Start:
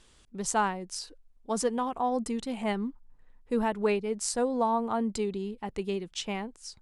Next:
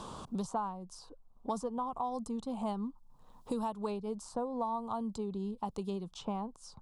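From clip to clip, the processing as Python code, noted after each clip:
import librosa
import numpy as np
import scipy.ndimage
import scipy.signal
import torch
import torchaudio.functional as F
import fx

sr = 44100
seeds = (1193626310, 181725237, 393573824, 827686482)

y = fx.curve_eq(x, sr, hz=(180.0, 350.0, 1100.0, 1900.0, 3600.0), db=(0, -8, 3, -25, -8))
y = fx.band_squash(y, sr, depth_pct=100)
y = F.gain(torch.from_numpy(y), -5.0).numpy()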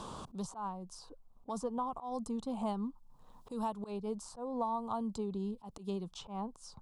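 y = fx.auto_swell(x, sr, attack_ms=122.0)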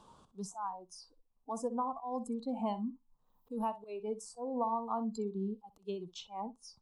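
y = fx.room_flutter(x, sr, wall_m=10.7, rt60_s=0.29)
y = fx.noise_reduce_blind(y, sr, reduce_db=18)
y = F.gain(torch.from_numpy(y), 1.5).numpy()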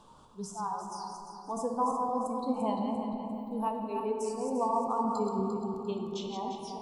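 y = fx.reverse_delay_fb(x, sr, ms=174, feedback_pct=60, wet_db=-5)
y = fx.room_shoebox(y, sr, seeds[0], volume_m3=220.0, walls='hard', distance_m=0.34)
y = F.gain(torch.from_numpy(y), 2.5).numpy()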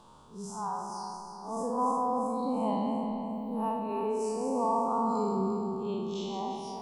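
y = fx.spec_blur(x, sr, span_ms=115.0)
y = F.gain(torch.from_numpy(y), 3.0).numpy()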